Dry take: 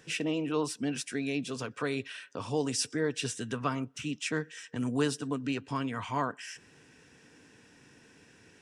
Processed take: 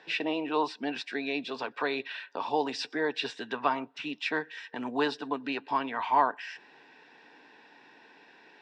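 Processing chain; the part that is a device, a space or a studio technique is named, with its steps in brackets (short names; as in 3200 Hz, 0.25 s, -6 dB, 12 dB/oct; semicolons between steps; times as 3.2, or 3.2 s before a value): phone earpiece (speaker cabinet 490–4000 Hz, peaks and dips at 500 Hz -6 dB, 860 Hz +7 dB, 1300 Hz -8 dB, 2200 Hz -4 dB, 3600 Hz +4 dB); thirty-one-band EQ 100 Hz -10 dB, 3150 Hz -9 dB, 6300 Hz -7 dB; gain +8 dB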